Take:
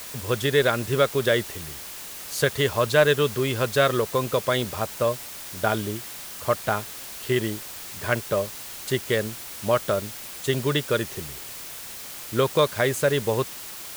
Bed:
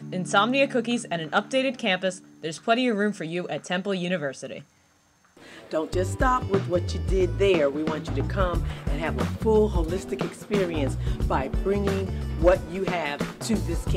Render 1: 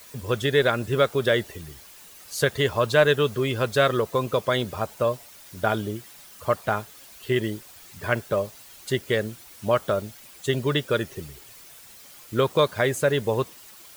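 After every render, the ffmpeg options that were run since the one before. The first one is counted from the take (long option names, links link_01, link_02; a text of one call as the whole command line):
ffmpeg -i in.wav -af "afftdn=noise_reduction=11:noise_floor=-38" out.wav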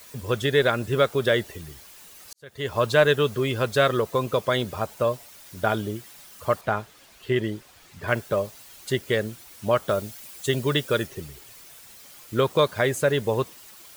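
ffmpeg -i in.wav -filter_complex "[0:a]asettb=1/sr,asplit=3[link_01][link_02][link_03];[link_01]atrim=end=6.614[link_04];[link_02]atrim=start=6.61:end=8.08,asetpts=PTS-STARTPTS,afade=type=in:duration=0.004:curve=qsin,afade=type=out:start_time=1.466:duration=0.004:curve=qsin,highshelf=frequency=6200:gain=-10.5[link_05];[link_03]atrim=start=8.076[link_06];[link_04][link_05]acrossfade=duration=0.004:curve1=hsin:curve2=qsin[link_07];[link_07][link_06]acrossfade=duration=0.004:curve1=qsin:curve2=hsin,asettb=1/sr,asplit=3[link_08][link_09][link_10];[link_08]atrim=end=9.894[link_11];[link_09]atrim=start=9.89:end=11.07,asetpts=PTS-STARTPTS,afade=type=in:duration=0.004:curve=qsin,afade=type=out:start_time=1.176:duration=0.004:curve=qsin,highshelf=frequency=5000:gain=5.5[link_12];[link_10]atrim=start=11.066[link_13];[link_11][link_12]acrossfade=duration=0.004:curve1=hsin:curve2=qsin[link_14];[link_14][link_13]acrossfade=duration=0.004:curve1=qsin:curve2=hsin,asplit=2[link_15][link_16];[link_15]atrim=end=2.33,asetpts=PTS-STARTPTS,afade=type=out:start_time=2.326:duration=0.004:curve=hsin[link_17];[link_16]atrim=start=2.33,asetpts=PTS-STARTPTS,afade=type=in:duration=0.46:curve=qua[link_18];[link_17][link_18]concat=n=2:v=0:a=1" out.wav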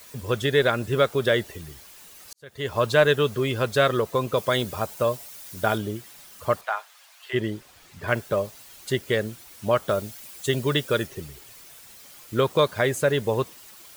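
ffmpeg -i in.wav -filter_complex "[0:a]asettb=1/sr,asplit=3[link_01][link_02][link_03];[link_01]atrim=end=4.374[link_04];[link_02]atrim=start=4.37:end=5.78,asetpts=PTS-STARTPTS,afade=type=in:duration=0.004:curve=qsin,afade=type=out:start_time=1.406:duration=0.004:curve=qsin,highshelf=frequency=5300:gain=6.5[link_05];[link_03]atrim=start=5.776[link_06];[link_04][link_05]acrossfade=duration=0.004:curve1=hsin:curve2=qsin[link_07];[link_07][link_06]acrossfade=duration=0.004:curve1=qsin:curve2=hsin,asplit=3[link_08][link_09][link_10];[link_08]afade=type=out:start_time=6.63:duration=0.02[link_11];[link_09]highpass=frequency=730:width=0.5412,highpass=frequency=730:width=1.3066,afade=type=in:start_time=6.63:duration=0.02,afade=type=out:start_time=7.33:duration=0.02[link_12];[link_10]afade=type=in:start_time=7.33:duration=0.02[link_13];[link_11][link_12][link_13]amix=inputs=3:normalize=0" out.wav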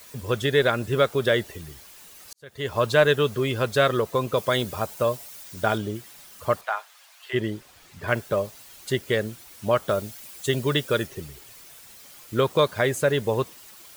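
ffmpeg -i in.wav -filter_complex "[0:a]asettb=1/sr,asplit=3[link_01][link_02][link_03];[link_01]atrim=end=5.434[link_04];[link_02]atrim=start=5.43:end=5.95,asetpts=PTS-STARTPTS,afade=type=in:duration=0.004:curve=qsin,afade=type=out:start_time=0.516:duration=0.004:curve=qsin,equalizer=frequency=12000:width_type=o:width=0.22:gain=-14[link_05];[link_03]atrim=start=5.946[link_06];[link_04][link_05]acrossfade=duration=0.004:curve1=hsin:curve2=qsin[link_07];[link_07][link_06]acrossfade=duration=0.004:curve1=qsin:curve2=hsin" out.wav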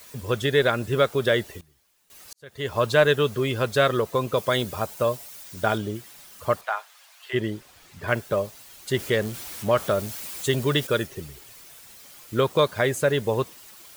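ffmpeg -i in.wav -filter_complex "[0:a]asettb=1/sr,asplit=3[link_01][link_02][link_03];[link_01]atrim=end=8.944[link_04];[link_02]atrim=start=8.94:end=10.87,asetpts=PTS-STARTPTS,afade=type=in:duration=0.004:curve=qsin,afade=type=out:start_time=1.926:duration=0.004:curve=qsin,aeval=exprs='val(0)+0.5*0.0188*sgn(val(0))':channel_layout=same[link_05];[link_03]atrim=start=10.866[link_06];[link_04][link_05]acrossfade=duration=0.004:curve1=hsin:curve2=qsin[link_07];[link_07][link_06]acrossfade=duration=0.004:curve1=qsin:curve2=hsin,asplit=3[link_08][link_09][link_10];[link_08]atrim=end=1.61,asetpts=PTS-STARTPTS,afade=type=out:start_time=1.38:duration=0.23:curve=log:silence=0.105925[link_11];[link_09]atrim=start=1.61:end=2.1,asetpts=PTS-STARTPTS,volume=-19.5dB[link_12];[link_10]atrim=start=2.1,asetpts=PTS-STARTPTS,afade=type=in:duration=0.23:curve=log:silence=0.105925[link_13];[link_11][link_12][link_13]concat=n=3:v=0:a=1" out.wav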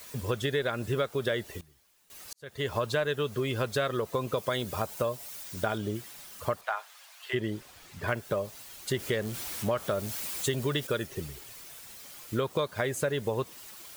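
ffmpeg -i in.wav -af "acompressor=threshold=-27dB:ratio=4" out.wav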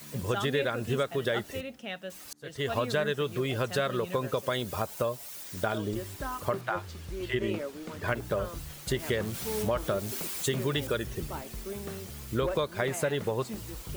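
ffmpeg -i in.wav -i bed.wav -filter_complex "[1:a]volume=-14.5dB[link_01];[0:a][link_01]amix=inputs=2:normalize=0" out.wav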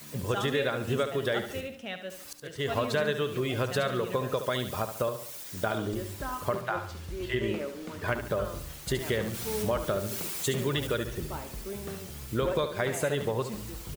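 ffmpeg -i in.wav -af "aecho=1:1:71|142|213|284|355:0.335|0.144|0.0619|0.0266|0.0115" out.wav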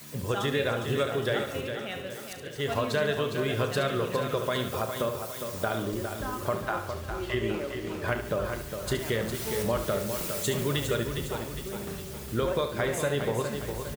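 ffmpeg -i in.wav -filter_complex "[0:a]asplit=2[link_01][link_02];[link_02]adelay=35,volume=-12dB[link_03];[link_01][link_03]amix=inputs=2:normalize=0,aecho=1:1:408|816|1224|1632|2040|2448:0.422|0.202|0.0972|0.0466|0.0224|0.0107" out.wav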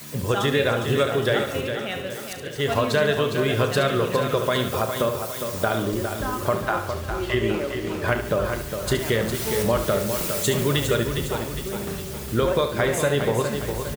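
ffmpeg -i in.wav -af "volume=6.5dB" out.wav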